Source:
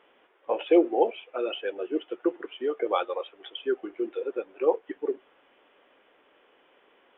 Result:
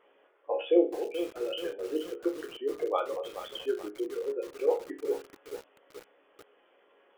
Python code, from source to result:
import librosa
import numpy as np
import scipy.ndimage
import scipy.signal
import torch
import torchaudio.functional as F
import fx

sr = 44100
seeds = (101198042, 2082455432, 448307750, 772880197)

y = fx.envelope_sharpen(x, sr, power=1.5)
y = fx.band_shelf(y, sr, hz=770.0, db=-11.5, octaves=1.7, at=(0.85, 1.41))
y = fx.resonator_bank(y, sr, root=37, chord='sus4', decay_s=0.31)
y = fx.echo_crushed(y, sr, ms=431, feedback_pct=55, bits=8, wet_db=-10.0)
y = y * librosa.db_to_amplitude(8.5)